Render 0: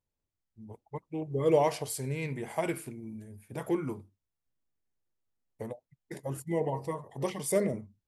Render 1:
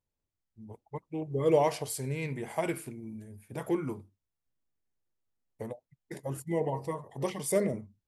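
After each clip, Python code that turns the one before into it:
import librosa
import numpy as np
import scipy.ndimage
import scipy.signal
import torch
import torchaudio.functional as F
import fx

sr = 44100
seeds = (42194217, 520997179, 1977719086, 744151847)

y = x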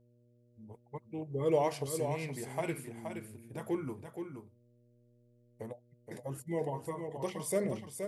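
y = x + 10.0 ** (-7.0 / 20.0) * np.pad(x, (int(473 * sr / 1000.0), 0))[:len(x)]
y = fx.dmg_buzz(y, sr, base_hz=120.0, harmonics=5, level_db=-62.0, tilt_db=-5, odd_only=False)
y = F.gain(torch.from_numpy(y), -4.5).numpy()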